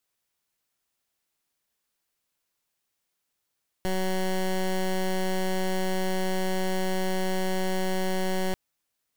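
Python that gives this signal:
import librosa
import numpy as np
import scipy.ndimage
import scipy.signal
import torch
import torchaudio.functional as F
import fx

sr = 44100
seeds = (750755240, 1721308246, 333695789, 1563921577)

y = fx.pulse(sr, length_s=4.69, hz=187.0, level_db=-26.0, duty_pct=15)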